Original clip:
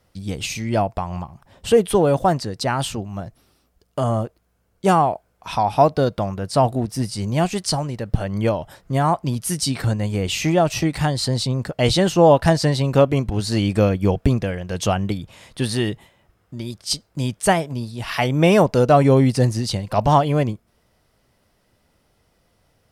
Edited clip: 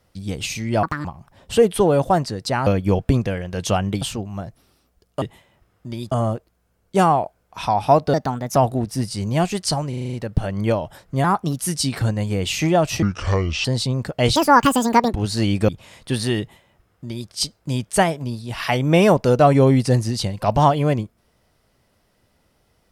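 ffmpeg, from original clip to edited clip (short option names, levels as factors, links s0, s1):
-filter_complex "[0:a]asplit=22[s0][s1][s2][s3][s4][s5][s6][s7][s8][s9][s10][s11][s12][s13][s14][s15][s16][s17][s18][s19][s20][s21];[s0]atrim=end=0.834[s22];[s1]atrim=start=0.83:end=1.19,asetpts=PTS-STARTPTS,asetrate=73647,aresample=44100[s23];[s2]atrim=start=1.186:end=2.812[s24];[s3]atrim=start=13.828:end=15.182[s25];[s4]atrim=start=2.808:end=4.012[s26];[s5]atrim=start=15.888:end=16.792[s27];[s6]atrim=start=4.008:end=6.034[s28];[s7]atrim=start=6.03:end=6.57,asetpts=PTS-STARTPTS,asetrate=56007,aresample=44100,atrim=end_sample=18751,asetpts=PTS-STARTPTS[s29];[s8]atrim=start=6.566:end=7.942[s30];[s9]atrim=start=7.898:end=7.942[s31];[s10]atrim=start=7.898:end=7.942[s32];[s11]atrim=start=7.898:end=7.942[s33];[s12]atrim=start=7.898:end=7.942[s34];[s13]atrim=start=7.898:end=7.942[s35];[s14]atrim=start=7.898:end=9.014[s36];[s15]atrim=start=9.01:end=9.41,asetpts=PTS-STARTPTS,asetrate=51597,aresample=44100[s37];[s16]atrim=start=9.406:end=10.854[s38];[s17]atrim=start=10.85:end=11.25,asetpts=PTS-STARTPTS,asetrate=28224,aresample=44100,atrim=end_sample=27562,asetpts=PTS-STARTPTS[s39];[s18]atrim=start=11.246:end=11.964[s40];[s19]atrim=start=11.96:end=13.28,asetpts=PTS-STARTPTS,asetrate=74970,aresample=44100,atrim=end_sample=34242,asetpts=PTS-STARTPTS[s41];[s20]atrim=start=13.276:end=13.832[s42];[s21]atrim=start=15.178[s43];[s22][s23]acrossfade=d=0.004:c1=hsin:c2=hsin[s44];[s44][s24]acrossfade=d=0.004:c1=hsin:c2=hsin[s45];[s45][s25]acrossfade=d=0.004:c1=hsin:c2=hsin[s46];[s46][s26]acrossfade=d=0.004:c1=hsin:c2=hsin[s47];[s47][s27]acrossfade=d=0.004:c1=hsin:c2=hsin[s48];[s48][s28]acrossfade=d=0.004:c1=hsin:c2=hsin[s49];[s49][s29]acrossfade=d=0.004:c1=hsin:c2=hsin[s50];[s50][s30]acrossfade=d=0.004:c1=hsin:c2=hsin[s51];[s51][s31]acrossfade=d=0.004:c1=hsin:c2=hsin[s52];[s52][s32]acrossfade=d=0.004:c1=hsin:c2=hsin[s53];[s53][s33]acrossfade=d=0.004:c1=hsin:c2=hsin[s54];[s54][s34]acrossfade=d=0.004:c1=hsin:c2=hsin[s55];[s55][s35]acrossfade=d=0.004:c1=hsin:c2=hsin[s56];[s56][s36]acrossfade=d=0.004:c1=hsin:c2=hsin[s57];[s57][s37]acrossfade=d=0.004:c1=hsin:c2=hsin[s58];[s58][s38]acrossfade=d=0.004:c1=hsin:c2=hsin[s59];[s59][s39]acrossfade=d=0.004:c1=hsin:c2=hsin[s60];[s60][s40]acrossfade=d=0.004:c1=hsin:c2=hsin[s61];[s61][s41]acrossfade=d=0.004:c1=hsin:c2=hsin[s62];[s62][s42]acrossfade=d=0.004:c1=hsin:c2=hsin[s63];[s63][s43]acrossfade=d=0.004:c1=hsin:c2=hsin"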